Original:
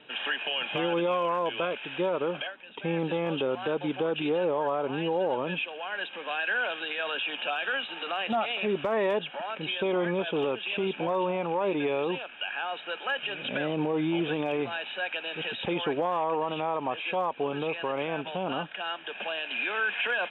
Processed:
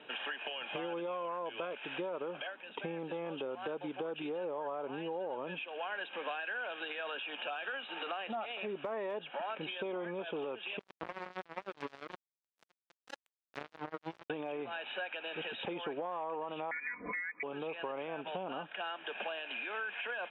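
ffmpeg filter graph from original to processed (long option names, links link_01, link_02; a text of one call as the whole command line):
ffmpeg -i in.wav -filter_complex "[0:a]asettb=1/sr,asplit=3[link_01][link_02][link_03];[link_01]atrim=end=10.794[link_04];[link_02]atrim=start=10.79:end=14.3,asetpts=PTS-STARTPTS,afade=type=in:duration=0.004:curve=qsin,afade=type=out:start_time=3.506:duration=0.004:curve=qsin,highshelf=frequency=3200:gain=-10,flanger=delay=3:depth=5.5:regen=36:speed=1.3:shape=triangular,acrusher=bits=3:mix=0:aa=0.5[link_05];[link_03]atrim=start=14.296[link_06];[link_04][link_05]acrossfade=duration=0.004:curve1=hsin:curve2=qsin[link_07];[link_07][link_06]acrossfade=duration=0.004:curve1=qsin:curve2=hsin,asettb=1/sr,asplit=3[link_08][link_09][link_10];[link_08]atrim=end=16.714[link_11];[link_09]atrim=start=16.71:end=17.43,asetpts=PTS-STARTPTS,afade=type=in:duration=0.004:curve=qsin,afade=type=out:start_time=0.716:duration=0.004:curve=qsin,highpass=frequency=260:width=0.5412,highpass=frequency=260:width=1.3066,aecho=1:1:4.1:0.84,atrim=end_sample=31752,lowpass=frequency=2300:width_type=q:width=0.5098,lowpass=frequency=2300:width_type=q:width=0.6013,lowpass=frequency=2300:width_type=q:width=0.9,lowpass=frequency=2300:width_type=q:width=2.563,afreqshift=-2700[link_12];[link_10]atrim=start=17.426[link_13];[link_11][link_12]acrossfade=duration=0.004:curve1=hsin:curve2=qsin[link_14];[link_14][link_13]acrossfade=duration=0.004:curve1=qsin:curve2=hsin,acompressor=threshold=-36dB:ratio=12,highpass=frequency=360:poles=1,highshelf=frequency=2400:gain=-10,volume=3.5dB" out.wav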